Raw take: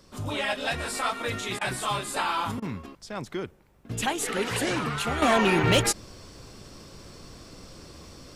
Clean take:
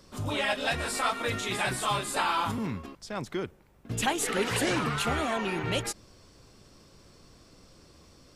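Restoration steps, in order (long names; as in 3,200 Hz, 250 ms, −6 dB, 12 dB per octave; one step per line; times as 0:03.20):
clipped peaks rebuilt −14 dBFS
repair the gap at 0:01.59/0:02.60, 21 ms
level 0 dB, from 0:05.22 −9.5 dB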